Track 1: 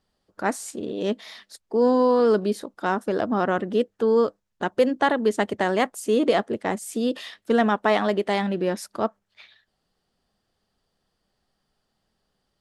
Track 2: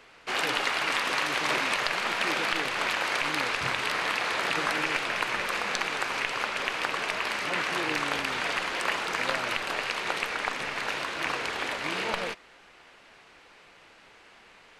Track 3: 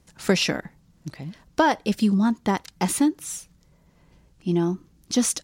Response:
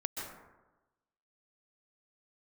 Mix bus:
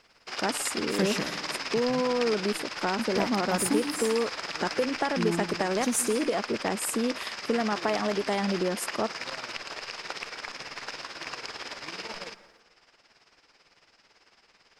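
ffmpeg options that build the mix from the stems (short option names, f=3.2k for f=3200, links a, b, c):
-filter_complex "[0:a]acompressor=threshold=-24dB:ratio=6,volume=0dB[a];[1:a]acrusher=bits=3:mode=log:mix=0:aa=0.000001,tremolo=f=18:d=0.68,lowpass=f=5.1k:t=q:w=12,volume=-7dB,asplit=2[b][c];[c]volume=-14dB[d];[2:a]adelay=700,volume=-10.5dB,asplit=3[e][f][g];[e]atrim=end=2.09,asetpts=PTS-STARTPTS,afade=t=out:st=2.086:d=0.004:c=hsin[h];[f]atrim=start=2.09:end=2.99,asetpts=PTS-STARTPTS,volume=0[i];[g]atrim=start=2.99,asetpts=PTS-STARTPTS,afade=t=in:d=0.004:c=hsin[j];[h][i][j]concat=n=3:v=0:a=1,asplit=2[k][l];[l]volume=-7.5dB[m];[3:a]atrim=start_sample=2205[n];[d][m]amix=inputs=2:normalize=0[o];[o][n]afir=irnorm=-1:irlink=0[p];[a][b][k][p]amix=inputs=4:normalize=0,aexciter=amount=6.4:drive=4.9:freq=6.9k,aemphasis=mode=reproduction:type=50kf"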